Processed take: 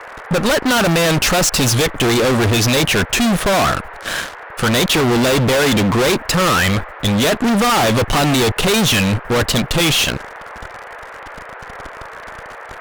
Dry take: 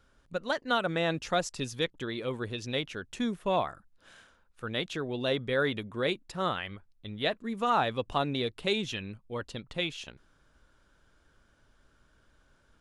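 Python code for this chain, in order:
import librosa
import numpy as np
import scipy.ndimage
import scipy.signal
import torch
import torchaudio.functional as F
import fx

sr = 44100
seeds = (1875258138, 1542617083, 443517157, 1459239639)

y = fx.fuzz(x, sr, gain_db=51.0, gate_db=-59.0)
y = fx.vibrato(y, sr, rate_hz=1.5, depth_cents=46.0)
y = fx.dmg_noise_band(y, sr, seeds[0], low_hz=430.0, high_hz=1900.0, level_db=-34.0)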